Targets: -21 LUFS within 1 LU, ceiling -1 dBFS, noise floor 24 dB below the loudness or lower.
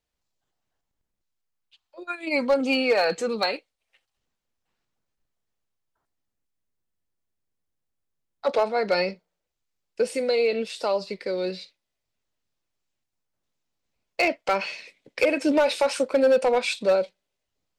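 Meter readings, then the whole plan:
clipped 0.5%; flat tops at -14.0 dBFS; loudness -24.0 LUFS; peak -14.0 dBFS; loudness target -21.0 LUFS
-> clip repair -14 dBFS; gain +3 dB

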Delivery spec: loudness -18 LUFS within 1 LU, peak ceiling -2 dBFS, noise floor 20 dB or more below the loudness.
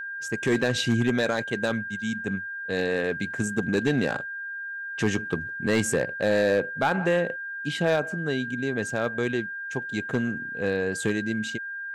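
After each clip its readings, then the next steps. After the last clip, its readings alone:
clipped 0.6%; flat tops at -15.5 dBFS; steady tone 1600 Hz; tone level -32 dBFS; loudness -27.0 LUFS; peak -15.5 dBFS; loudness target -18.0 LUFS
-> clip repair -15.5 dBFS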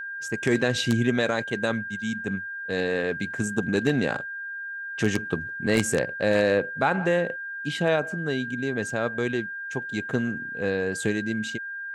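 clipped 0.0%; steady tone 1600 Hz; tone level -32 dBFS
-> notch 1600 Hz, Q 30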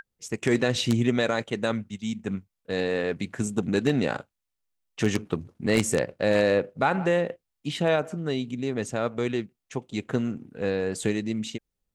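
steady tone none; loudness -27.0 LUFS; peak -6.0 dBFS; loudness target -18.0 LUFS
-> gain +9 dB; limiter -2 dBFS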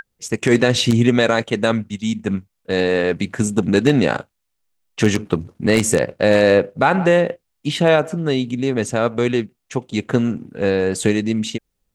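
loudness -18.5 LUFS; peak -2.0 dBFS; noise floor -74 dBFS

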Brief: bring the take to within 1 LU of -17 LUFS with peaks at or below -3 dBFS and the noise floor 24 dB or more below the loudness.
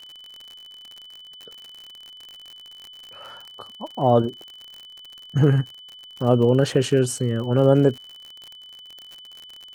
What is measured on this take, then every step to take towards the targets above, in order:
ticks 55/s; steady tone 3000 Hz; tone level -41 dBFS; loudness -20.5 LUFS; peak -4.0 dBFS; loudness target -17.0 LUFS
-> de-click; notch 3000 Hz, Q 30; gain +3.5 dB; limiter -3 dBFS

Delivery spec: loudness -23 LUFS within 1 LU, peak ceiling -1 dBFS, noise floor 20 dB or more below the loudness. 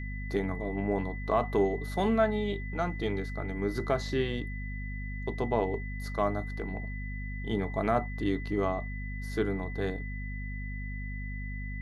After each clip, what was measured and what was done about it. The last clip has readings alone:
hum 50 Hz; harmonics up to 250 Hz; hum level -34 dBFS; steady tone 2000 Hz; tone level -43 dBFS; loudness -32.5 LUFS; peak -13.0 dBFS; loudness target -23.0 LUFS
-> notches 50/100/150/200/250 Hz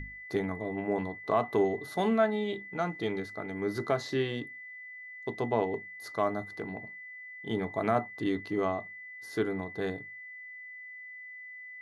hum none; steady tone 2000 Hz; tone level -43 dBFS
-> notch 2000 Hz, Q 30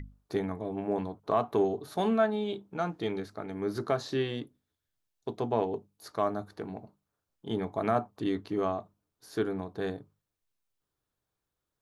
steady tone none; loudness -32.5 LUFS; peak -13.0 dBFS; loudness target -23.0 LUFS
-> gain +9.5 dB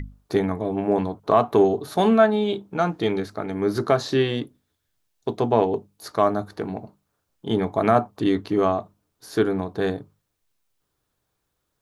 loudness -23.0 LUFS; peak -3.5 dBFS; noise floor -77 dBFS

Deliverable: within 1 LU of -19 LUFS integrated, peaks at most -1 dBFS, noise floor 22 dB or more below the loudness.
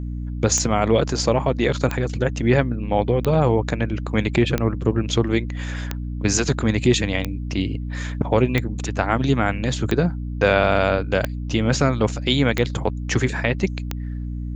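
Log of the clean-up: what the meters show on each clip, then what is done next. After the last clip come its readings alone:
clicks 11; hum 60 Hz; harmonics up to 300 Hz; hum level -25 dBFS; loudness -21.5 LUFS; peak -3.0 dBFS; loudness target -19.0 LUFS
-> de-click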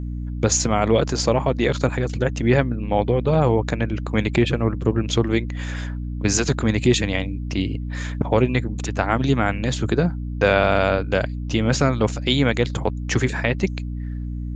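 clicks 0; hum 60 Hz; harmonics up to 300 Hz; hum level -25 dBFS
-> de-hum 60 Hz, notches 5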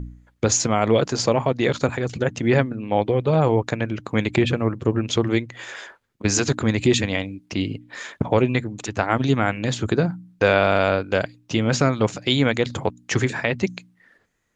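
hum none; loudness -22.0 LUFS; peak -2.5 dBFS; loudness target -19.0 LUFS
-> gain +3 dB; limiter -1 dBFS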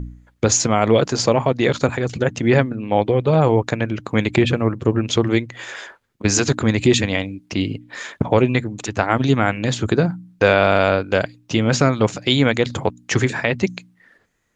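loudness -19.0 LUFS; peak -1.0 dBFS; noise floor -60 dBFS

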